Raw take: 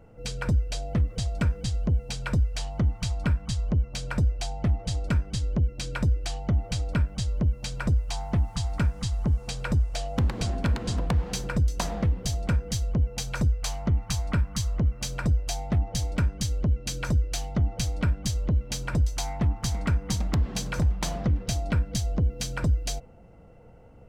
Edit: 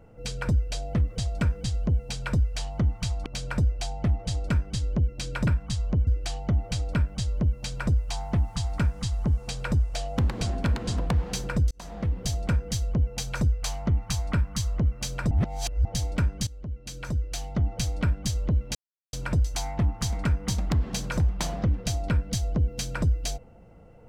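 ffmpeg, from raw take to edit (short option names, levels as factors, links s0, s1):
-filter_complex "[0:a]asplit=9[s0][s1][s2][s3][s4][s5][s6][s7][s8];[s0]atrim=end=3.262[s9];[s1]atrim=start=3.858:end=6.072[s10];[s2]atrim=start=3.258:end=3.862[s11];[s3]atrim=start=6.068:end=11.71,asetpts=PTS-STARTPTS,afade=t=out:st=5.638:d=0.004:c=hsin[s12];[s4]atrim=start=11.71:end=15.312,asetpts=PTS-STARTPTS,afade=t=in:d=0.51[s13];[s5]atrim=start=15.308:end=15.852,asetpts=PTS-STARTPTS,areverse[s14];[s6]atrim=start=15.848:end=16.47,asetpts=PTS-STARTPTS,afade=t=out:st=0.618:d=0.004:c=hsin:silence=0.149624[s15];[s7]atrim=start=16.47:end=18.75,asetpts=PTS-STARTPTS,afade=t=in:d=1.28:silence=0.149624,afade=t=out:st=2.276:d=0.004:c=hsin,apad=pad_dur=0.38[s16];[s8]atrim=start=18.75,asetpts=PTS-STARTPTS,afade=t=in:d=0.004:c=hsin[s17];[s9][s10]acrossfade=d=0.004:c1=hsin:c2=hsin[s18];[s18][s11]acrossfade=d=0.004:c1=hsin:c2=hsin[s19];[s12][s13]concat=n=2:v=0:a=1[s20];[s19][s20]acrossfade=d=0.004:c1=hsin:c2=hsin[s21];[s21][s14]acrossfade=d=0.004:c1=hsin:c2=hsin[s22];[s15][s16][s17]concat=n=3:v=0:a=1[s23];[s22][s23]acrossfade=d=0.004:c1=hsin:c2=hsin"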